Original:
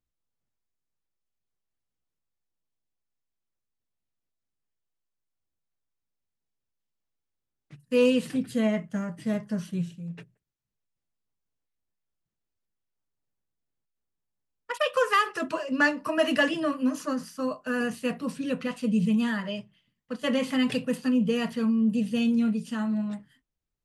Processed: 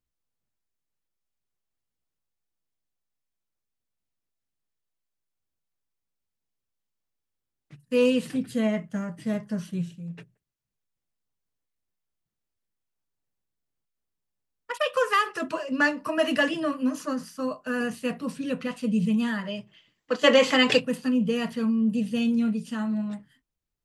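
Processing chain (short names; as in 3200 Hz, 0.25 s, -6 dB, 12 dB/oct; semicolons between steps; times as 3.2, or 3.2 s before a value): spectral gain 19.67–20.8, 280–8000 Hz +11 dB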